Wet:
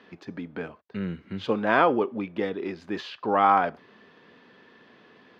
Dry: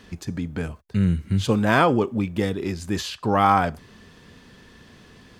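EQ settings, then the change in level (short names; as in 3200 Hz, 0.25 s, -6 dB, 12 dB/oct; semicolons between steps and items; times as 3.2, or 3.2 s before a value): HPF 320 Hz 12 dB/oct; air absorption 300 m; 0.0 dB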